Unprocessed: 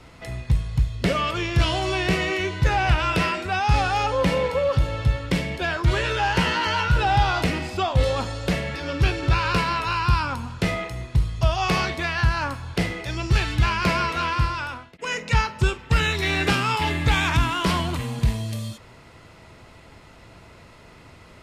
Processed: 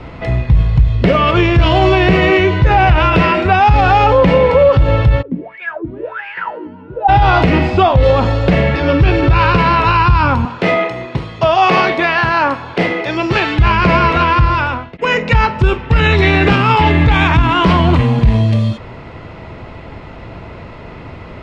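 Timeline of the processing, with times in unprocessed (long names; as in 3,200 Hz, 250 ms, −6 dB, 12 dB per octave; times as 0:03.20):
0:05.21–0:07.08: LFO wah 2.2 Hz → 0.78 Hz 240–2,300 Hz, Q 12
0:10.45–0:13.59: high-pass filter 280 Hz
whole clip: low-pass filter 2,300 Hz 12 dB per octave; parametric band 1,500 Hz −4 dB 1 octave; boost into a limiter +18 dB; level −1 dB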